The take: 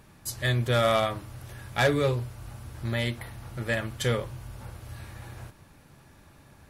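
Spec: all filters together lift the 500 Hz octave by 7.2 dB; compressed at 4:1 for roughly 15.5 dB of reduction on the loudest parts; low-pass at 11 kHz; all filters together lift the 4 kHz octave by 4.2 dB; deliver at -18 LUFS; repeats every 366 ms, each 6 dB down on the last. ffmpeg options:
-af "lowpass=11000,equalizer=f=500:t=o:g=8.5,equalizer=f=4000:t=o:g=5,acompressor=threshold=0.0224:ratio=4,aecho=1:1:366|732|1098|1464|1830|2196:0.501|0.251|0.125|0.0626|0.0313|0.0157,volume=7.5"

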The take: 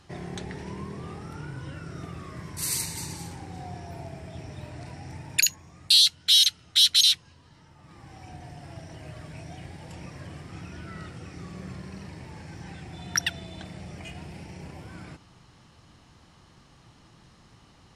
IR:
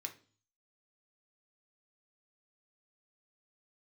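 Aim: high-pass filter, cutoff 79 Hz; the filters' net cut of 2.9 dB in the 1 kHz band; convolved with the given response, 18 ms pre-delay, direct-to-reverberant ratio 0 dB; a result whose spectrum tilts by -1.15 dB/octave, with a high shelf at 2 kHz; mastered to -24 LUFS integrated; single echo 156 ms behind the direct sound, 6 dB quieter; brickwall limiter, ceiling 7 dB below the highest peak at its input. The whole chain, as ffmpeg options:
-filter_complex "[0:a]highpass=79,equalizer=f=1000:t=o:g=-6.5,highshelf=f=2000:g=8,alimiter=limit=0.447:level=0:latency=1,aecho=1:1:156:0.501,asplit=2[s0][s1];[1:a]atrim=start_sample=2205,adelay=18[s2];[s1][s2]afir=irnorm=-1:irlink=0,volume=1.26[s3];[s0][s3]amix=inputs=2:normalize=0,volume=0.398"

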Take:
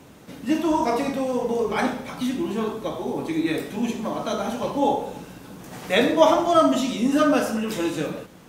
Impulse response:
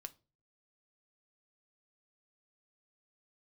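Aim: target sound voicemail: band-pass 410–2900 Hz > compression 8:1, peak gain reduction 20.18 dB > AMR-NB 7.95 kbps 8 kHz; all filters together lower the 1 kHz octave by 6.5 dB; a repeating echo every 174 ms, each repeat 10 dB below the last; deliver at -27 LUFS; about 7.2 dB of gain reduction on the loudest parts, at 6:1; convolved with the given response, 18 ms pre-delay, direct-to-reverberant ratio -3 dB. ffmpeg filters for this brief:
-filter_complex "[0:a]equalizer=f=1000:t=o:g=-8.5,acompressor=threshold=0.0794:ratio=6,aecho=1:1:174|348|522|696:0.316|0.101|0.0324|0.0104,asplit=2[s0][s1];[1:a]atrim=start_sample=2205,adelay=18[s2];[s1][s2]afir=irnorm=-1:irlink=0,volume=2.51[s3];[s0][s3]amix=inputs=2:normalize=0,highpass=410,lowpass=2900,acompressor=threshold=0.0112:ratio=8,volume=6.31" -ar 8000 -c:a libopencore_amrnb -b:a 7950

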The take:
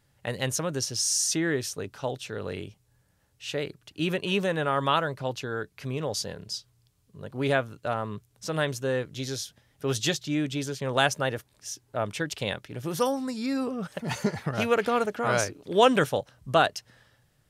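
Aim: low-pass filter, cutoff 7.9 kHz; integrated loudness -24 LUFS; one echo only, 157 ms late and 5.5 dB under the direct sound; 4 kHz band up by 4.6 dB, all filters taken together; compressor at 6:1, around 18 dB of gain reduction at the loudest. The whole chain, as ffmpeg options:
-af "lowpass=7900,equalizer=f=4000:t=o:g=6.5,acompressor=threshold=0.0178:ratio=6,aecho=1:1:157:0.531,volume=4.73"

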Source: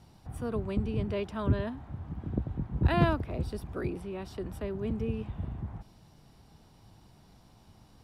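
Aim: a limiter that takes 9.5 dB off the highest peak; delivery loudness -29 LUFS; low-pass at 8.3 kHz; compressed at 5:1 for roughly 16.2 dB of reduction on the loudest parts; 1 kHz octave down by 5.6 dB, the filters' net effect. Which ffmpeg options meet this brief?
-af "lowpass=8300,equalizer=f=1000:t=o:g=-8,acompressor=threshold=0.0126:ratio=5,volume=6.31,alimiter=limit=0.112:level=0:latency=1"

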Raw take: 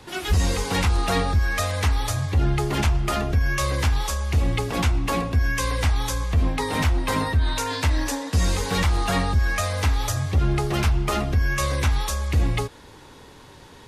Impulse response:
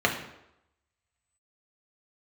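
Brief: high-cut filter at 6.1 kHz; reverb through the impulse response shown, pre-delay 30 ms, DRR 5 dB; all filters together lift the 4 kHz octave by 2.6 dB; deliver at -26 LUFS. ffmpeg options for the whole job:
-filter_complex "[0:a]lowpass=6100,equalizer=f=4000:t=o:g=4,asplit=2[s0][s1];[1:a]atrim=start_sample=2205,adelay=30[s2];[s1][s2]afir=irnorm=-1:irlink=0,volume=0.1[s3];[s0][s3]amix=inputs=2:normalize=0,volume=0.668"

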